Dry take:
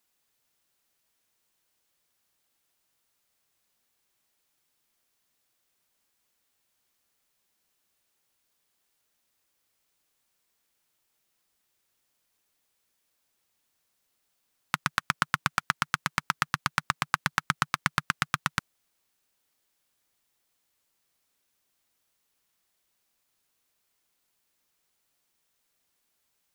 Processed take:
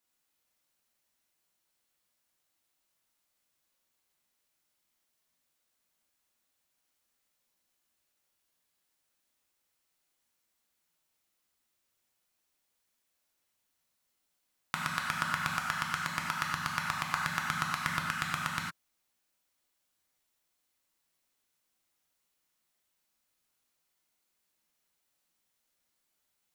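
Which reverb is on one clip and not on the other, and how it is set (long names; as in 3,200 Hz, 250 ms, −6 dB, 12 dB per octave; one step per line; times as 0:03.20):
reverb whose tail is shaped and stops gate 130 ms flat, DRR −1.5 dB
level −7.5 dB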